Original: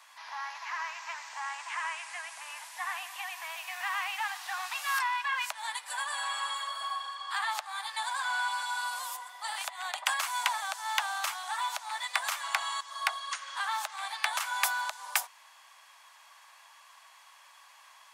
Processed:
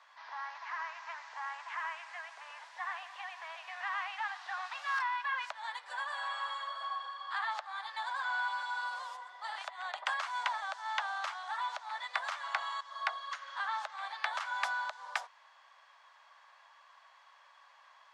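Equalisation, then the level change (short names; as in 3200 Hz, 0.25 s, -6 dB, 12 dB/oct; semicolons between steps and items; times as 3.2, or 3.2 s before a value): tape spacing loss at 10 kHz 36 dB; bell 830 Hz -8.5 dB 1.6 oct; bell 2500 Hz -7 dB 0.79 oct; +8.5 dB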